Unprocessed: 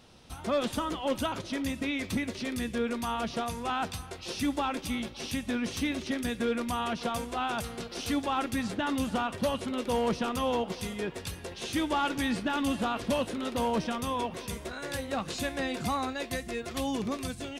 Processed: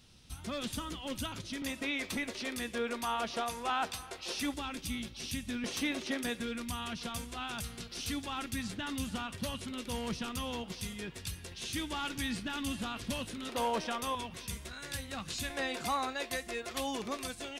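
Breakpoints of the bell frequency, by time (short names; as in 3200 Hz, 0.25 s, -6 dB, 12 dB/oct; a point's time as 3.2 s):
bell -13.5 dB 2.7 oct
660 Hz
from 1.62 s 110 Hz
from 4.54 s 670 Hz
from 5.64 s 78 Hz
from 6.4 s 590 Hz
from 13.49 s 120 Hz
from 14.15 s 510 Hz
from 15.5 s 120 Hz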